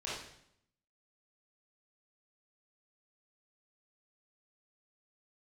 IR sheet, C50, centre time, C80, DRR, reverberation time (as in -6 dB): -0.5 dB, 62 ms, 5.0 dB, -8.5 dB, 0.70 s